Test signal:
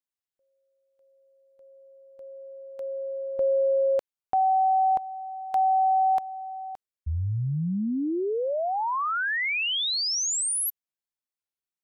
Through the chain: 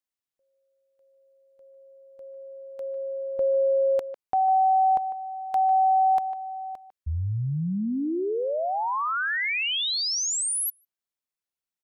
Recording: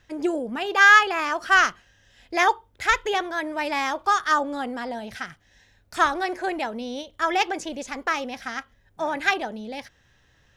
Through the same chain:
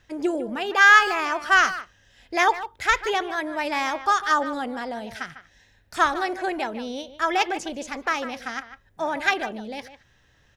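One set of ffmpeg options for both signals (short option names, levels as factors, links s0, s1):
-filter_complex "[0:a]asplit=2[s0][s1];[s1]adelay=150,highpass=300,lowpass=3400,asoftclip=type=hard:threshold=0.2,volume=0.251[s2];[s0][s2]amix=inputs=2:normalize=0"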